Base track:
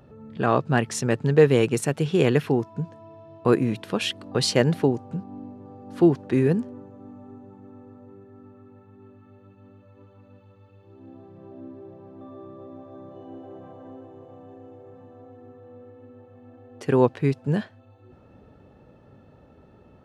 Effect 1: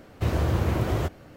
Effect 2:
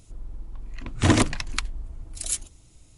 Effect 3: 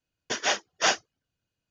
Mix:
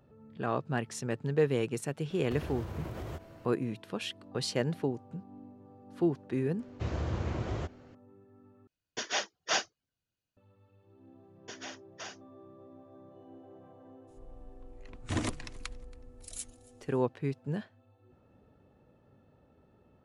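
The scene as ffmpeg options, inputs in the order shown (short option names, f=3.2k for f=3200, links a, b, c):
-filter_complex "[1:a]asplit=2[a][b];[3:a]asplit=2[c][d];[0:a]volume=-11dB[e];[a]acompressor=threshold=-30dB:ratio=6:attack=3.2:release=140:knee=1:detection=peak[f];[b]aresample=16000,aresample=44100[g];[c]equalizer=f=4.2k:w=2:g=2.5[h];[d]acompressor=threshold=-24dB:ratio=6:attack=3.2:release=140:knee=1:detection=peak[i];[2:a]aecho=1:1:277|554:0.0708|0.0234[j];[e]asplit=2[k][l];[k]atrim=end=8.674[m];[h]atrim=end=1.7,asetpts=PTS-STARTPTS,volume=-7dB[n];[l]atrim=start=10.366[o];[f]atrim=end=1.36,asetpts=PTS-STARTPTS,volume=-6dB,afade=t=in:d=0.004:c=hsin,afade=t=out:st=1.356:d=0.004:c=hsin,adelay=2100[p];[g]atrim=end=1.36,asetpts=PTS-STARTPTS,volume=-9.5dB,afade=t=in:d=0.004:c=hsin,afade=t=out:st=1.356:d=0.004:c=hsin,adelay=6590[q];[i]atrim=end=1.7,asetpts=PTS-STARTPTS,volume=-14.5dB,afade=t=in:d=0.004:c=hsin,afade=t=out:st=1.696:d=0.004:c=hsin,adelay=11180[r];[j]atrim=end=2.97,asetpts=PTS-STARTPTS,volume=-14dB,afade=t=in:d=0.02,afade=t=out:st=2.95:d=0.02,adelay=14070[s];[m][n]acrossfade=d=0.004:c1=hsin:c2=hsin[t];[t][o]acrossfade=d=0.004:c1=hsin:c2=hsin[u];[u][p][q][r][s]amix=inputs=5:normalize=0"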